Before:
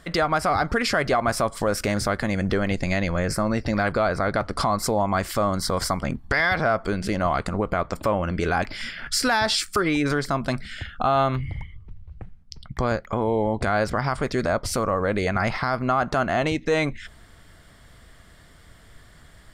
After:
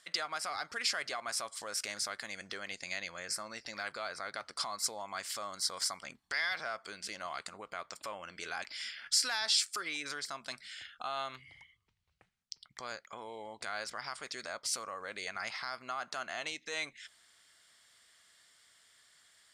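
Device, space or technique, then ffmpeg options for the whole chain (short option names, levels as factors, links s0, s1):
piezo pickup straight into a mixer: -af "lowpass=7100,aderivative"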